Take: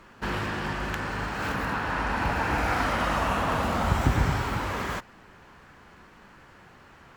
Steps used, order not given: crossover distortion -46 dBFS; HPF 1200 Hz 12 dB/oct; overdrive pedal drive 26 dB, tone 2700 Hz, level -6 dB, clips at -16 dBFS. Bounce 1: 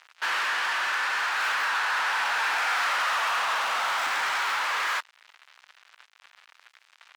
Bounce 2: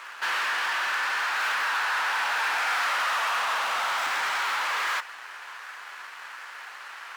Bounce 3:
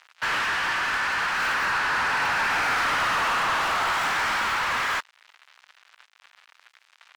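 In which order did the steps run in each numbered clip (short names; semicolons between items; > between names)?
crossover distortion > overdrive pedal > HPF; overdrive pedal > crossover distortion > HPF; crossover distortion > HPF > overdrive pedal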